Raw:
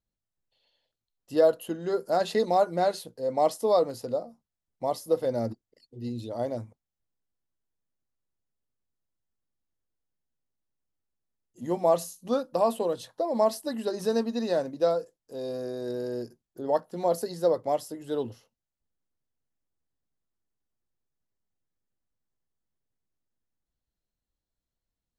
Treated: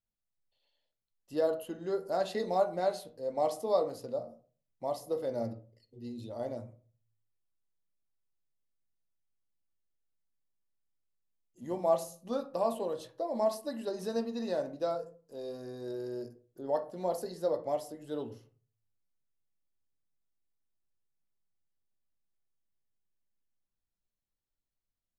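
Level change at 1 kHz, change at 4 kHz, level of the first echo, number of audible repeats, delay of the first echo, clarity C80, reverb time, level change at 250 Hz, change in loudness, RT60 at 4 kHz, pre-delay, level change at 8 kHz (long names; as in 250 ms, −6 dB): −7.0 dB, −7.5 dB, no echo audible, no echo audible, no echo audible, 20.0 dB, 0.40 s, −6.5 dB, −6.5 dB, 0.25 s, 3 ms, −7.5 dB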